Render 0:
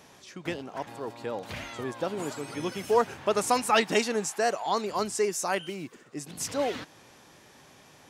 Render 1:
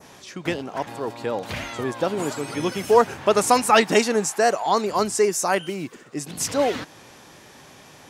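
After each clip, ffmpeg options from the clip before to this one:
-af "adynamicequalizer=threshold=0.00631:dfrequency=3200:dqfactor=1.1:tfrequency=3200:tqfactor=1.1:attack=5:release=100:ratio=0.375:range=2:mode=cutabove:tftype=bell,volume=7.5dB"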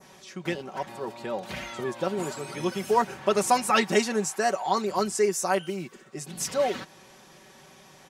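-af "aecho=1:1:5.3:0.65,volume=-6.5dB"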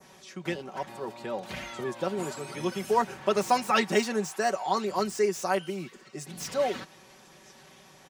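-filter_complex "[0:a]acrossover=split=190|1600|6500[a][b][c][d];[c]aecho=1:1:1051|2102|3153:0.1|0.045|0.0202[e];[d]aeval=exprs='0.0126*(abs(mod(val(0)/0.0126+3,4)-2)-1)':c=same[f];[a][b][e][f]amix=inputs=4:normalize=0,volume=-2dB"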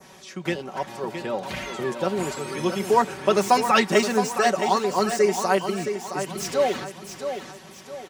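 -af "aecho=1:1:667|1334|2001|2668:0.376|0.147|0.0572|0.0223,volume=5.5dB"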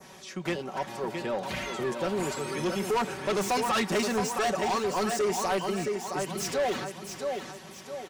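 -af "asoftclip=type=tanh:threshold=-22dB,volume=-1dB"

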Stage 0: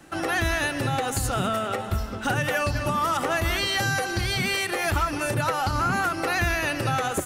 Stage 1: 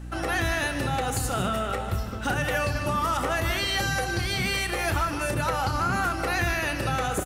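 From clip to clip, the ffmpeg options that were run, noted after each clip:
-filter_complex "[0:a]aeval=exprs='val(0)+0.0178*(sin(2*PI*60*n/s)+sin(2*PI*2*60*n/s)/2+sin(2*PI*3*60*n/s)/3+sin(2*PI*4*60*n/s)/4+sin(2*PI*5*60*n/s)/5)':c=same,asplit=2[a][b];[b]aecho=0:1:32.07|151.6:0.251|0.251[c];[a][c]amix=inputs=2:normalize=0,volume=-2dB"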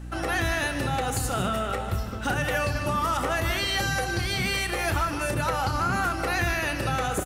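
-af anull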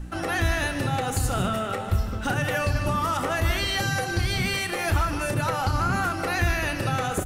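-af "lowshelf=f=99:g=11,bandreject=f=60:t=h:w=6,bandreject=f=120:t=h:w=6"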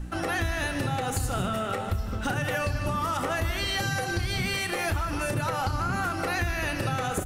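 -af "acompressor=threshold=-24dB:ratio=6"

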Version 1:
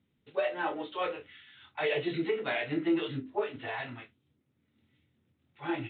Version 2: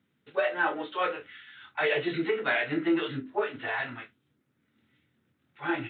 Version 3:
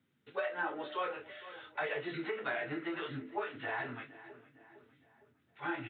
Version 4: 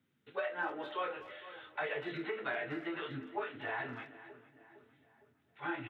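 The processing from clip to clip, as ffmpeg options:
-af "highpass=120,equalizer=f=1.5k:w=1.9:g=8,volume=2dB"
-filter_complex "[0:a]flanger=delay=7.4:depth=2.7:regen=-56:speed=0.99:shape=sinusoidal,asplit=2[a][b];[b]adelay=459,lowpass=f=2.4k:p=1,volume=-19dB,asplit=2[c][d];[d]adelay=459,lowpass=f=2.4k:p=1,volume=0.52,asplit=2[e][f];[f]adelay=459,lowpass=f=2.4k:p=1,volume=0.52,asplit=2[g][h];[h]adelay=459,lowpass=f=2.4k:p=1,volume=0.52[i];[a][c][e][g][i]amix=inputs=5:normalize=0,acrossover=split=780|1700[j][k][l];[j]acompressor=threshold=-40dB:ratio=4[m];[k]acompressor=threshold=-39dB:ratio=4[n];[l]acompressor=threshold=-49dB:ratio=4[o];[m][n][o]amix=inputs=3:normalize=0,volume=1dB"
-filter_complex "[0:a]asplit=2[a][b];[b]adelay=240,highpass=300,lowpass=3.4k,asoftclip=type=hard:threshold=-31.5dB,volume=-16dB[c];[a][c]amix=inputs=2:normalize=0,volume=-1dB"

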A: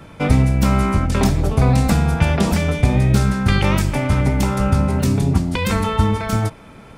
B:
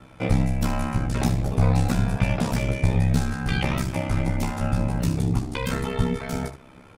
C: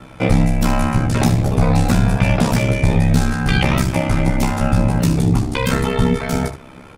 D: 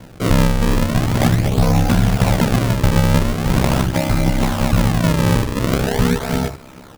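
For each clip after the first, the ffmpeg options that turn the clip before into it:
-filter_complex "[0:a]asplit=2[a][b];[b]aecho=0:1:14|73:0.668|0.251[c];[a][c]amix=inputs=2:normalize=0,aeval=exprs='val(0)*sin(2*PI*33*n/s)':c=same,volume=-6dB"
-filter_complex "[0:a]asplit=2[a][b];[b]alimiter=limit=-14dB:level=0:latency=1:release=24,volume=0dB[c];[a][c]amix=inputs=2:normalize=0,bandreject=f=50:t=h:w=6,bandreject=f=100:t=h:w=6,volume=3dB"
-af "acrusher=samples=35:mix=1:aa=0.000001:lfo=1:lforange=56:lforate=0.42"

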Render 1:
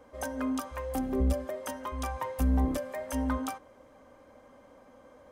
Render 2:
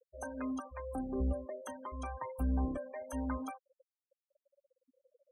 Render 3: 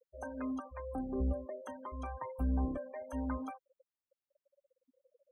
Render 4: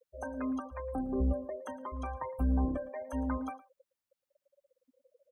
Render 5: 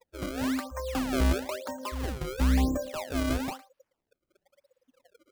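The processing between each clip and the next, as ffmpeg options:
-af "afftfilt=real='re*gte(hypot(re,im),0.0178)':imag='im*gte(hypot(re,im),0.0178)':win_size=1024:overlap=0.75,volume=-6.5dB"
-af "equalizer=f=10k:w=0.32:g=-11.5"
-af "aecho=1:1:112:0.112,volume=3.5dB"
-af "acrusher=samples=28:mix=1:aa=0.000001:lfo=1:lforange=44.8:lforate=1,volume=5dB"

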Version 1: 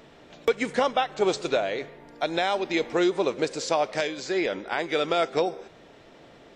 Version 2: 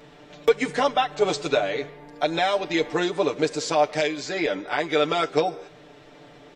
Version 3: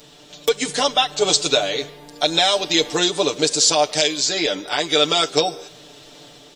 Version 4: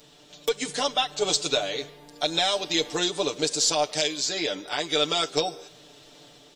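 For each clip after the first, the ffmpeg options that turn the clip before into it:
-af "aecho=1:1:6.8:0.91"
-af "aexciter=amount=6.2:drive=2.1:freq=3k,dynaudnorm=f=520:g=3:m=11.5dB,volume=-1dB"
-af "aeval=exprs='0.841*(cos(1*acos(clip(val(0)/0.841,-1,1)))-cos(1*PI/2))+0.0168*(cos(4*acos(clip(val(0)/0.841,-1,1)))-cos(4*PI/2))':c=same,volume=-7dB"

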